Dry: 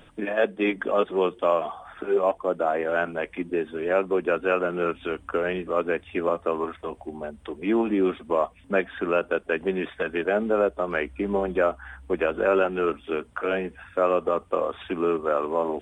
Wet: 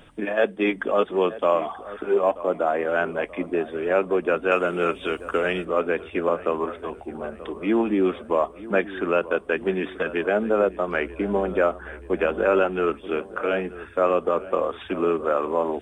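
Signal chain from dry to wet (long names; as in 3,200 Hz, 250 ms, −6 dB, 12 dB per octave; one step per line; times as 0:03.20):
0:04.51–0:05.65: high-shelf EQ 2,800 Hz +10.5 dB
on a send: feedback echo with a low-pass in the loop 932 ms, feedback 56%, low-pass 1,900 Hz, level −16 dB
on the sum: level +1.5 dB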